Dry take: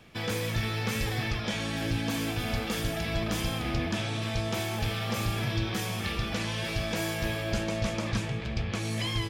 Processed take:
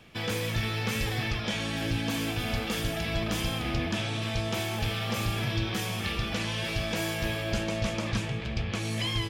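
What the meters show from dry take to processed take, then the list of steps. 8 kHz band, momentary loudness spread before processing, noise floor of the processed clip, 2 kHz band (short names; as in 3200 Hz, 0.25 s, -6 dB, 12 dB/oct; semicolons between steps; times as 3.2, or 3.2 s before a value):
0.0 dB, 2 LU, -34 dBFS, +1.0 dB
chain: bell 2900 Hz +3 dB 0.54 oct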